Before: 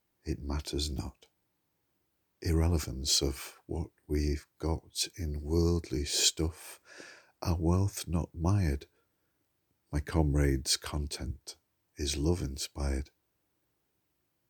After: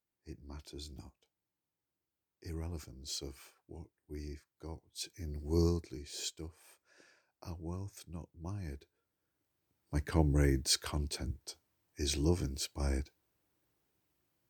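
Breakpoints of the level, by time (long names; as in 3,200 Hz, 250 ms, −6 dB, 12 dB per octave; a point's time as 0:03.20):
0:04.75 −13.5 dB
0:05.64 −1.5 dB
0:06.02 −14 dB
0:08.56 −14 dB
0:10.01 −1.5 dB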